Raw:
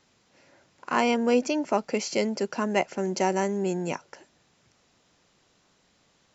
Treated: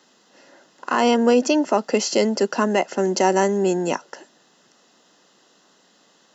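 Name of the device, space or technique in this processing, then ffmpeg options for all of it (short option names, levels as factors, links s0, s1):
PA system with an anti-feedback notch: -af "highpass=f=200:w=0.5412,highpass=f=200:w=1.3066,asuperstop=centerf=2300:order=4:qfactor=5.3,alimiter=limit=0.168:level=0:latency=1:release=60,volume=2.66"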